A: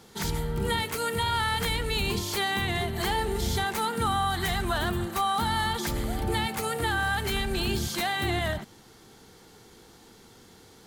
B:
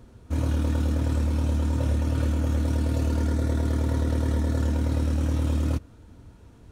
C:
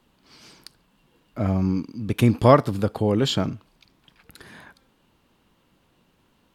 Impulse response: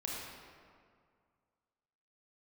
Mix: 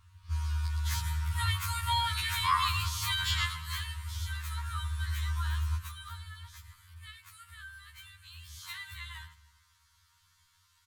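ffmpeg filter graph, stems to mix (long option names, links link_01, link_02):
-filter_complex "[0:a]adelay=700,volume=6dB,afade=type=out:start_time=3.4:duration=0.7:silence=0.398107,afade=type=out:start_time=5.84:duration=0.44:silence=0.375837,afade=type=in:start_time=8.39:duration=0.33:silence=0.446684,asplit=2[link_01][link_02];[link_02]volume=-18.5dB[link_03];[1:a]volume=-5dB,asplit=2[link_04][link_05];[link_05]volume=-10.5dB[link_06];[2:a]volume=-4dB,asplit=3[link_07][link_08][link_09];[link_08]volume=-5dB[link_10];[link_09]apad=whole_len=296223[link_11];[link_04][link_11]sidechaincompress=threshold=-45dB:ratio=8:attack=49:release=1380[link_12];[3:a]atrim=start_sample=2205[link_13];[link_03][link_06]amix=inputs=2:normalize=0[link_14];[link_14][link_13]afir=irnorm=-1:irlink=0[link_15];[link_10]aecho=0:1:111|222|333|444|555:1|0.34|0.116|0.0393|0.0134[link_16];[link_01][link_12][link_07][link_15][link_16]amix=inputs=5:normalize=0,afftfilt=real='re*(1-between(b*sr/4096,160,910))':imag='im*(1-between(b*sr/4096,160,910))':win_size=4096:overlap=0.75,acrossover=split=230[link_17][link_18];[link_17]acompressor=threshold=-28dB:ratio=4[link_19];[link_19][link_18]amix=inputs=2:normalize=0,afftfilt=real='re*2*eq(mod(b,4),0)':imag='im*2*eq(mod(b,4),0)':win_size=2048:overlap=0.75"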